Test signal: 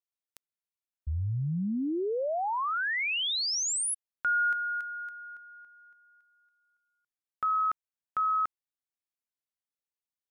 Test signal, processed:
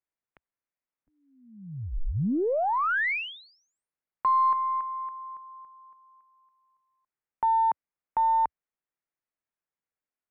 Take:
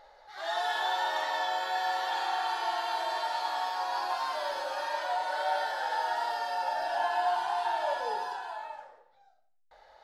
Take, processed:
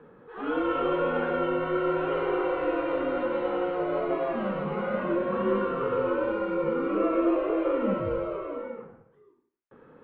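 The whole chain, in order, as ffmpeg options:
-af "highpass=f=320:t=q:w=0.5412,highpass=f=320:t=q:w=1.307,lowpass=f=2700:t=q:w=0.5176,lowpass=f=2700:t=q:w=0.7071,lowpass=f=2700:t=q:w=1.932,afreqshift=-380,aeval=exprs='0.119*(cos(1*acos(clip(val(0)/0.119,-1,1)))-cos(1*PI/2))+0.00106*(cos(6*acos(clip(val(0)/0.119,-1,1)))-cos(6*PI/2))':c=same,equalizer=f=74:t=o:w=0.54:g=-7.5,volume=1.68"

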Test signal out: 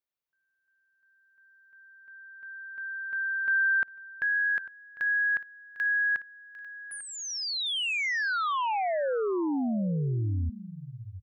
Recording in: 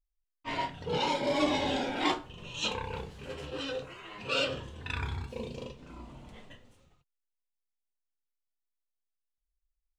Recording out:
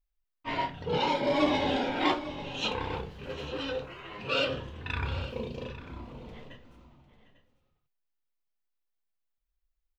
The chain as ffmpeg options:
-filter_complex "[0:a]equalizer=f=8500:t=o:w=1:g=-14,asplit=2[s0][s1];[s1]aecho=0:1:751|847:0.15|0.158[s2];[s0][s2]amix=inputs=2:normalize=0,volume=1.33"

